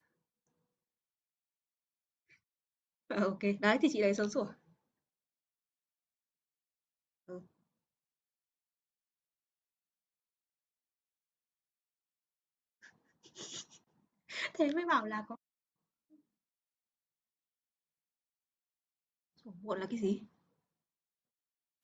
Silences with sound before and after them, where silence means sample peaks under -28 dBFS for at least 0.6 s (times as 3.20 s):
4.43–14.43 s
15.17–19.71 s